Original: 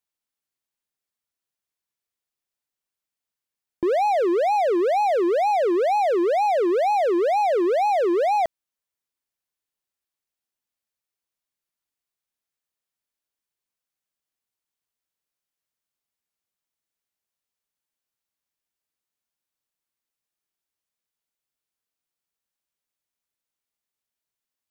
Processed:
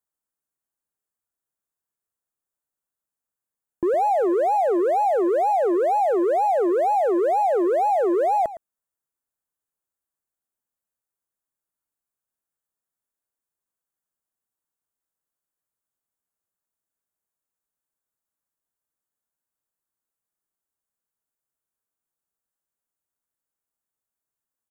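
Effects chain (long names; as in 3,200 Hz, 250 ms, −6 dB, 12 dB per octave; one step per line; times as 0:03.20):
flat-topped bell 3,400 Hz −12.5 dB
on a send: single-tap delay 111 ms −15.5 dB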